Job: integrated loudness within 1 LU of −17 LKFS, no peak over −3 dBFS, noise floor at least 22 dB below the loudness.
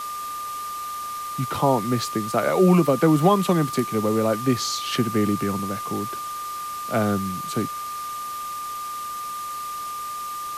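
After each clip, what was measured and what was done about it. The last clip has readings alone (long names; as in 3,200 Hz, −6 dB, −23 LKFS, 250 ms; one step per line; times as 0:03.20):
interfering tone 1,200 Hz; level of the tone −29 dBFS; background noise floor −32 dBFS; target noise floor −46 dBFS; integrated loudness −24.0 LKFS; sample peak −5.5 dBFS; target loudness −17.0 LKFS
→ notch filter 1,200 Hz, Q 30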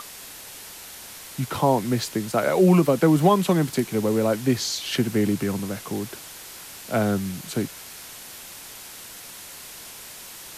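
interfering tone none found; background noise floor −41 dBFS; target noise floor −45 dBFS
→ noise reduction from a noise print 6 dB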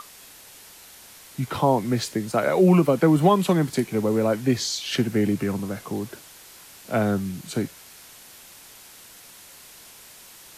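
background noise floor −47 dBFS; integrated loudness −23.0 LKFS; sample peak −6.0 dBFS; target loudness −17.0 LKFS
→ level +6 dB
brickwall limiter −3 dBFS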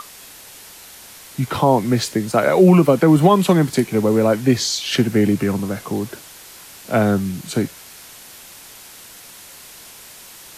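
integrated loudness −17.0 LKFS; sample peak −3.0 dBFS; background noise floor −41 dBFS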